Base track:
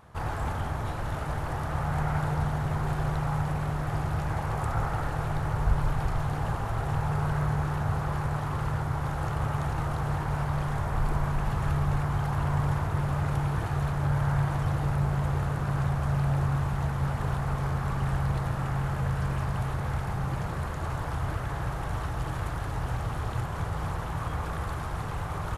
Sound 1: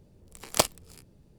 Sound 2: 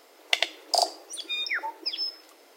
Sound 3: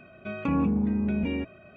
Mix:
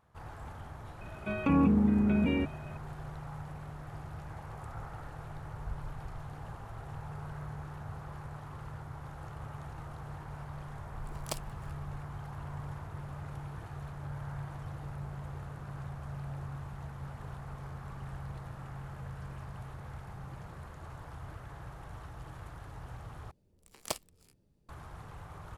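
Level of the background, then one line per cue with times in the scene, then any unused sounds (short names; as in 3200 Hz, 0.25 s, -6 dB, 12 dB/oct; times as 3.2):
base track -14.5 dB
1.01 add 3
10.72 add 1 -15.5 dB
23.31 replace with 1 -13 dB
not used: 2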